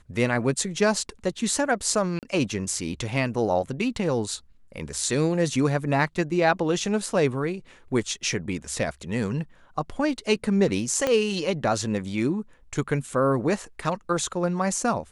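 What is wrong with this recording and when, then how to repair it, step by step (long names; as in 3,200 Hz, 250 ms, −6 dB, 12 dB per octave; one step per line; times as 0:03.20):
0:02.19–0:02.23: drop-out 38 ms
0:11.07: click −10 dBFS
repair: click removal
repair the gap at 0:02.19, 38 ms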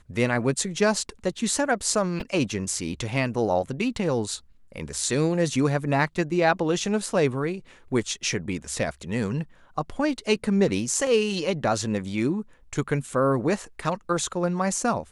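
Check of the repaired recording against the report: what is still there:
0:11.07: click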